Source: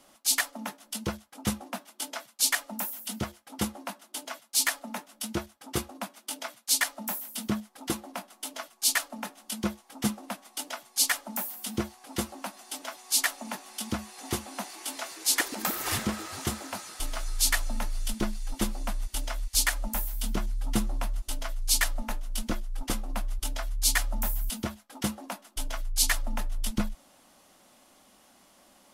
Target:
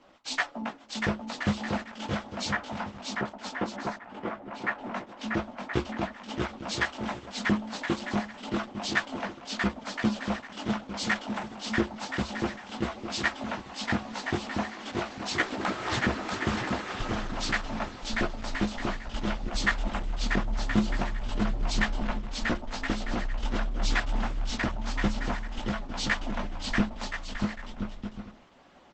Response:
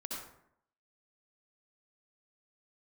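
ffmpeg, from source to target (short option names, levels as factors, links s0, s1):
-filter_complex "[0:a]lowpass=2900,asettb=1/sr,asplit=3[s0][s1][s2];[s0]atrim=end=2.494[s3];[s1]atrim=start=2.49:end=4.79,asetpts=PTS-STARTPTS,afade=t=in:d=0.004:c=qsin,afade=t=out:st=2.296:d=0.004:c=qsin,acrossover=split=160 2200:gain=0.0708 1 0.1[s4][s5][s6];[s4][s5][s6]amix=inputs=3:normalize=0[s7];[s2]atrim=start=4.786[s8];[s3][s7]acrossfade=d=0.004:c1=hsin:c2=qsin[s9];[s9][s8]acrossfade=d=0.004:c1=qsin:c2=hsin,flanger=delay=15.5:depth=5:speed=0.32,aecho=1:1:640|1024|1254|1393|1476:0.631|0.398|0.251|0.158|0.1,volume=2.11" -ar 48000 -c:a libopus -b:a 12k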